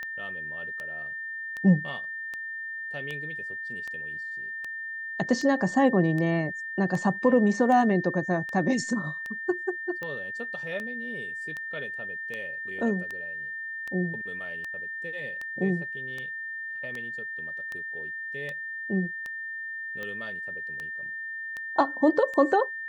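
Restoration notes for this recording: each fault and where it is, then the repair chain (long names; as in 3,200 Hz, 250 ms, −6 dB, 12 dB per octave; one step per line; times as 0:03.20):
scratch tick 78 rpm −22 dBFS
whistle 1,800 Hz −33 dBFS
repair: click removal
notch filter 1,800 Hz, Q 30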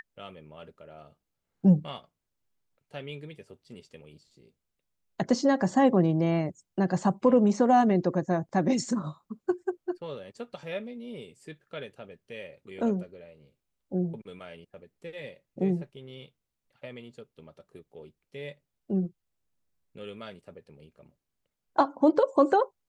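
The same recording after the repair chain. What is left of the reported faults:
none of them is left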